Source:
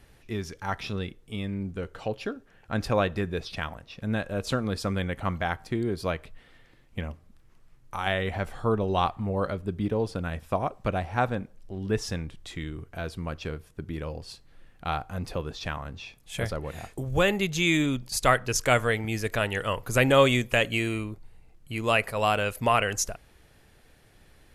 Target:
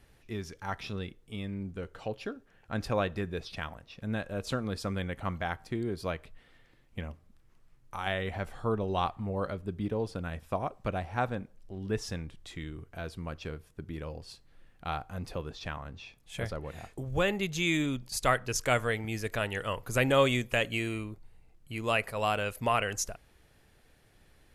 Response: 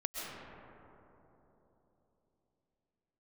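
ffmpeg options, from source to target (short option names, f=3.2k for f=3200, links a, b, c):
-filter_complex "[0:a]asettb=1/sr,asplit=3[a][b][c];[a]atrim=end=15.494[d];[b]atrim=start=15.49:end=17.43,asetpts=PTS-STARTPTS,afade=t=in:d=0.004:c=qsin,afade=t=out:st=1.936:d=0.004:c=qsin,highshelf=f=7.2k:g=-5[e];[c]atrim=start=17.426[f];[d][e]acrossfade=d=0.004:c1=hsin:c2=qsin[g];[g][f]acrossfade=d=0.004:c1=qsin:c2=hsin,volume=-5dB"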